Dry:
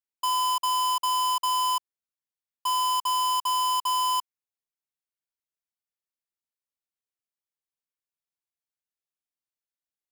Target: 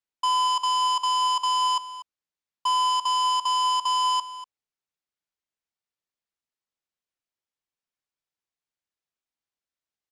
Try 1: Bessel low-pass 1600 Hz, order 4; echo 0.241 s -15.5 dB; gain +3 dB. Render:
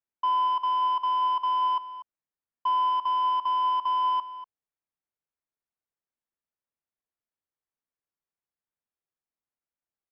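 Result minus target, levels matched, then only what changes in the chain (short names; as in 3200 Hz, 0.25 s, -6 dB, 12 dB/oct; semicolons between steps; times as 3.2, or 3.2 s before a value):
2000 Hz band -3.5 dB
change: Bessel low-pass 6200 Hz, order 4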